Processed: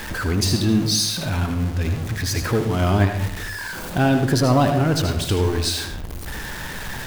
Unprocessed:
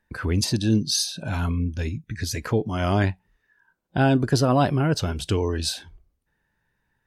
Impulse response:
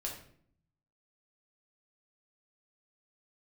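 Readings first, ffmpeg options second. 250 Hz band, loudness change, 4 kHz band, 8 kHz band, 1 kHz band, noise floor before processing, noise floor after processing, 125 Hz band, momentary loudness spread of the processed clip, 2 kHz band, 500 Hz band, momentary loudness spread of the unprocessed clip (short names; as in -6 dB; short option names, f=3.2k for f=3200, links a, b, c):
+3.0 dB, +2.5 dB, +4.5 dB, +4.0 dB, +3.0 dB, -74 dBFS, -32 dBFS, +3.5 dB, 13 LU, +5.5 dB, +2.5 dB, 10 LU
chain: -filter_complex "[0:a]aeval=exprs='val(0)+0.5*0.0501*sgn(val(0))':c=same,asplit=2[a][b];[1:a]atrim=start_sample=2205,adelay=78[c];[b][c]afir=irnorm=-1:irlink=0,volume=-6.5dB[d];[a][d]amix=inputs=2:normalize=0"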